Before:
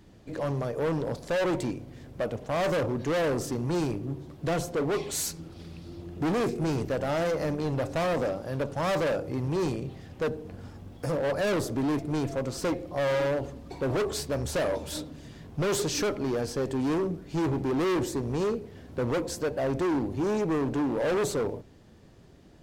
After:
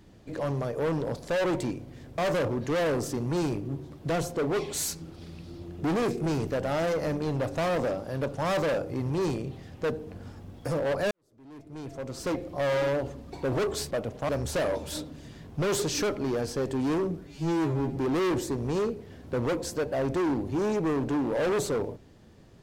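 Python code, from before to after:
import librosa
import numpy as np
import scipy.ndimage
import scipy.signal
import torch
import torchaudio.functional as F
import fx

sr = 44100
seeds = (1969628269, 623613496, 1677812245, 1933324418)

y = fx.edit(x, sr, fx.move(start_s=2.18, length_s=0.38, to_s=14.29),
    fx.fade_in_span(start_s=11.49, length_s=1.3, curve='qua'),
    fx.stretch_span(start_s=17.27, length_s=0.35, factor=2.0), tone=tone)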